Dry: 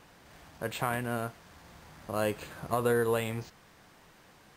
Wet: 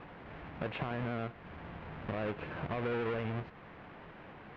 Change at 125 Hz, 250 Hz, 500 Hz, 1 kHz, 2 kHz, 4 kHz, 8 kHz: -1.5 dB, -3.0 dB, -7.0 dB, -6.0 dB, -4.5 dB, -6.5 dB, under -30 dB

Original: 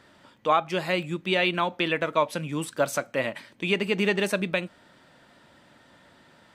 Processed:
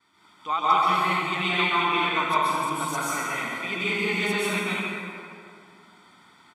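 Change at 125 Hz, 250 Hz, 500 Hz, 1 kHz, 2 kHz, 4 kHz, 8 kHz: -1.5, -1.5, -5.0, +6.5, +3.0, +2.5, +4.0 dB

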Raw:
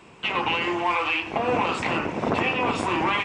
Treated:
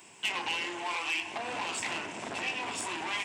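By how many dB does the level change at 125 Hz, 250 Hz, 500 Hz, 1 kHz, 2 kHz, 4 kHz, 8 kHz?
-19.0, -15.5, -15.0, -12.0, -7.0, -4.5, +5.5 dB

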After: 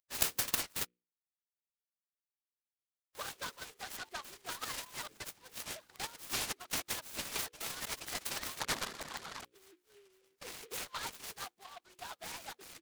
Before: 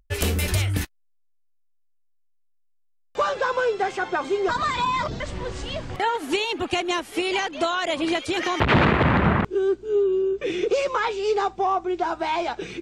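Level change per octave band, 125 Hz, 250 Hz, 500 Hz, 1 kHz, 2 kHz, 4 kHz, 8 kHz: -29.0, -27.5, -28.0, -22.0, -16.5, -10.5, -2.0 dB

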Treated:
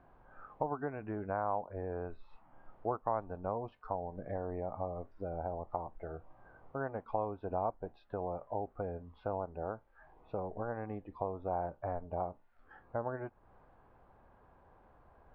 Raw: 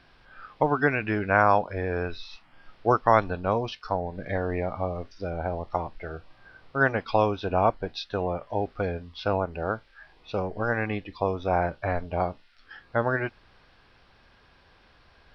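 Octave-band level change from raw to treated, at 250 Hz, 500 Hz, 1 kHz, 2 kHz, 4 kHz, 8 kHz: -12.5 dB, -11.0 dB, -12.0 dB, -22.5 dB, under -30 dB, n/a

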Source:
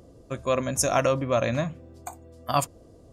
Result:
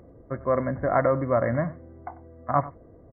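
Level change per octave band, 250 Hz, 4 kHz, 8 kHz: +1.0 dB, under -40 dB, under -40 dB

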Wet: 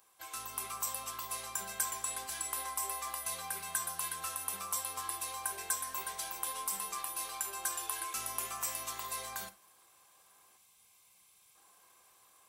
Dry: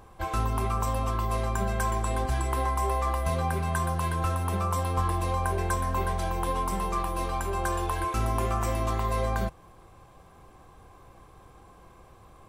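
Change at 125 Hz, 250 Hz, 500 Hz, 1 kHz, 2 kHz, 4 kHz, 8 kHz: -32.0, -24.5, -20.0, -12.0, -7.5, -1.0, +5.5 dB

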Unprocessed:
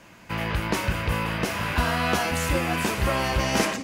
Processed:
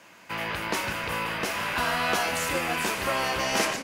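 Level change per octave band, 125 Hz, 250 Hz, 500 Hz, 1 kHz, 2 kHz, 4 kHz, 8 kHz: -12.0, -7.0, -2.5, -1.0, 0.0, 0.0, 0.0 dB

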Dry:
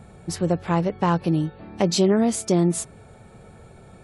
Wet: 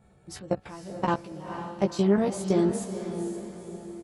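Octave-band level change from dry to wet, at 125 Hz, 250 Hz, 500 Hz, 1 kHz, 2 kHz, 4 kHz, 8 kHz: -8.5, -5.0, -4.0, -5.0, -4.5, -11.0, -11.0 dB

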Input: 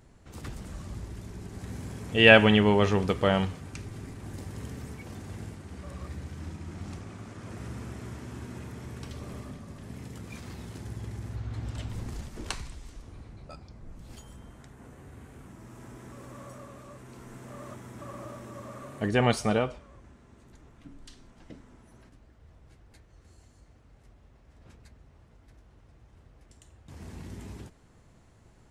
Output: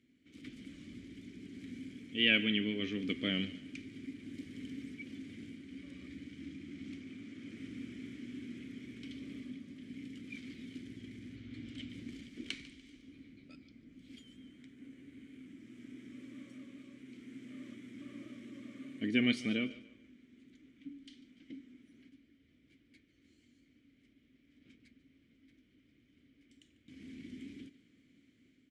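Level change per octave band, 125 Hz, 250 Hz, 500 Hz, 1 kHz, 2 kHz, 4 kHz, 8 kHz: -16.5, -6.0, -18.5, -27.0, -10.5, -5.0, -14.5 dB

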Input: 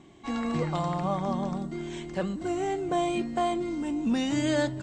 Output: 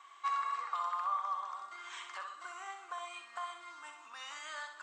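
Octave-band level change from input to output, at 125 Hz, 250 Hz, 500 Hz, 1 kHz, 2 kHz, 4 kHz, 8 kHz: under -40 dB, under -40 dB, -25.5 dB, -3.5 dB, -6.0 dB, -9.5 dB, -10.0 dB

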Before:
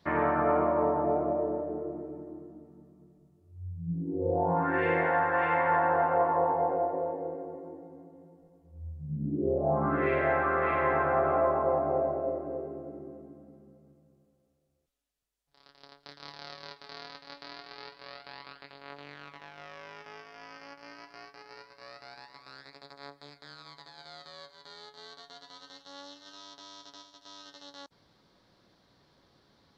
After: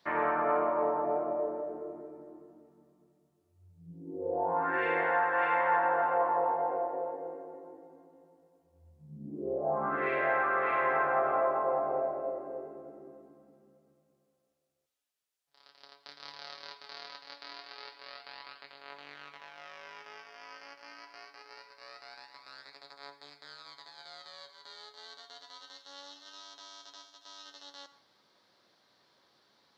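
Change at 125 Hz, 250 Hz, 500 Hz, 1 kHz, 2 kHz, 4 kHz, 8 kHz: -14.5 dB, -8.5 dB, -3.5 dB, -1.5 dB, 0.0 dB, 0.0 dB, n/a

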